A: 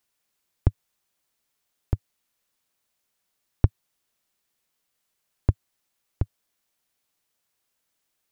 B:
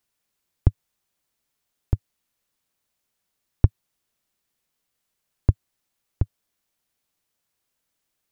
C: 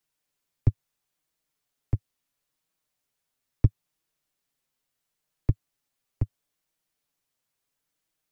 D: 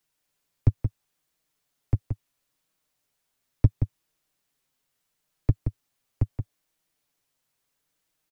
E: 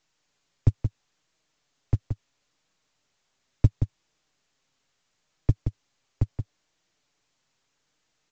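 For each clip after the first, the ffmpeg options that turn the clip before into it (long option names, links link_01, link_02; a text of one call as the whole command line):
ffmpeg -i in.wav -af "lowshelf=frequency=280:gain=5,volume=-1.5dB" out.wav
ffmpeg -i in.wav -filter_complex "[0:a]acrossover=split=220|410[link_01][link_02][link_03];[link_03]asoftclip=type=hard:threshold=-32.5dB[link_04];[link_01][link_02][link_04]amix=inputs=3:normalize=0,flanger=delay=6.2:depth=1.5:regen=-16:speed=0.74:shape=triangular" out.wav
ffmpeg -i in.wav -filter_complex "[0:a]asplit=2[link_01][link_02];[link_02]asoftclip=type=hard:threshold=-20.5dB,volume=-6dB[link_03];[link_01][link_03]amix=inputs=2:normalize=0,asplit=2[link_04][link_05];[link_05]adelay=174.9,volume=-7dB,highshelf=frequency=4000:gain=-3.94[link_06];[link_04][link_06]amix=inputs=2:normalize=0" out.wav
ffmpeg -i in.wav -ar 16000 -c:a pcm_mulaw out.wav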